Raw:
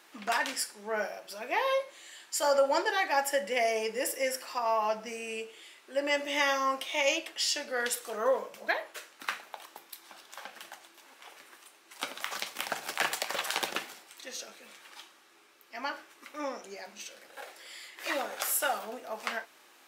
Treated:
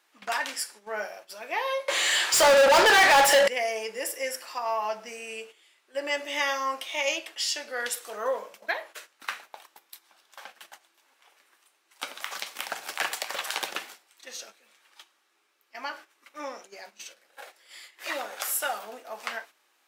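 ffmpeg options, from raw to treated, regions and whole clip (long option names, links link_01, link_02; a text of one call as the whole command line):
ffmpeg -i in.wav -filter_complex "[0:a]asettb=1/sr,asplit=3[link_01][link_02][link_03];[link_01]atrim=end=1.884[link_04];[link_02]atrim=start=1.88:end=3.48,asetpts=PTS-STARTPTS,afade=type=in:duration=0.004:curve=qsin,afade=type=out:start_time=1.596:duration=0.004:curve=qsin,equalizer=frequency=480:width_type=o:width=0.67:gain=5.5,asplit=2[link_05][link_06];[link_06]highpass=frequency=720:poles=1,volume=35dB,asoftclip=type=tanh:threshold=-11dB[link_07];[link_05][link_07]amix=inputs=2:normalize=0,lowpass=frequency=4700:poles=1,volume=-6dB[link_08];[link_03]atrim=start=3.476[link_09];[link_04][link_08]acrossfade=duration=0.004:curve1=hsin:curve2=qsin[link_10];[link_10][link_09]acrossfade=duration=0.004:curve1=qsin:curve2=hsin,lowshelf=frequency=280:gain=-11,agate=range=-10dB:threshold=-47dB:ratio=16:detection=peak,volume=1dB" out.wav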